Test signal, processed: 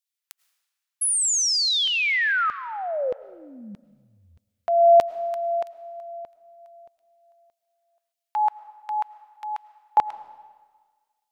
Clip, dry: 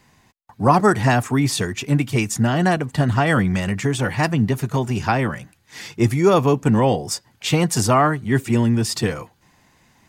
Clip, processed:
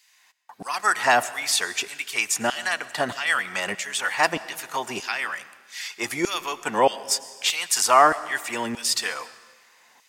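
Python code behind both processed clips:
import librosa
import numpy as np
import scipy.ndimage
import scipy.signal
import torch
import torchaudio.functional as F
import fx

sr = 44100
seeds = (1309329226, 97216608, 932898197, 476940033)

y = fx.filter_lfo_highpass(x, sr, shape='saw_down', hz=1.6, low_hz=460.0, high_hz=3300.0, q=0.82)
y = fx.rev_freeverb(y, sr, rt60_s=1.5, hf_ratio=0.95, predelay_ms=65, drr_db=16.5)
y = y * librosa.db_to_amplitude(2.5)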